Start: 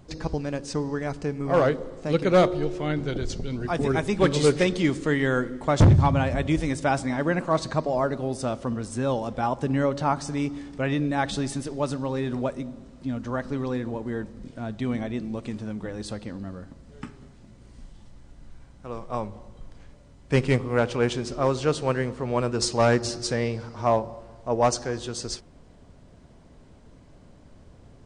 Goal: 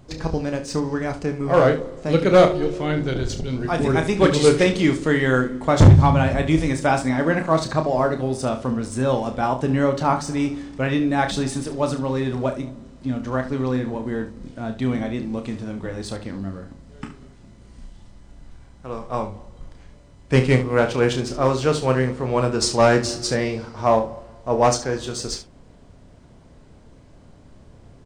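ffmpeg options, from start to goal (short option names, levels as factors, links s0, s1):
-filter_complex "[0:a]asplit=2[s0][s1];[s1]aeval=exprs='sgn(val(0))*max(abs(val(0))-0.0119,0)':c=same,volume=0.282[s2];[s0][s2]amix=inputs=2:normalize=0,aecho=1:1:31|71:0.422|0.237,volume=1.26"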